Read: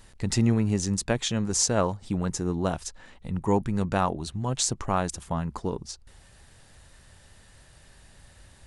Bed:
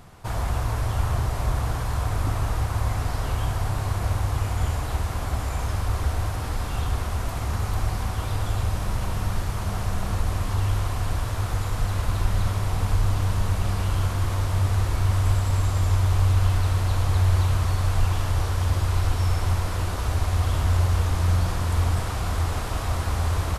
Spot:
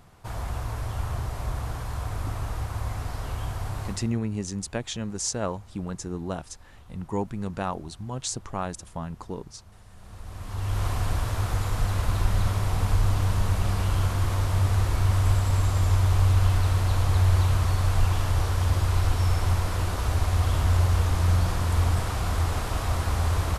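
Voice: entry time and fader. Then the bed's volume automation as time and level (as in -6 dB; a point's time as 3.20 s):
3.65 s, -5.0 dB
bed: 3.87 s -6 dB
4.20 s -25.5 dB
9.87 s -25.5 dB
10.85 s -0.5 dB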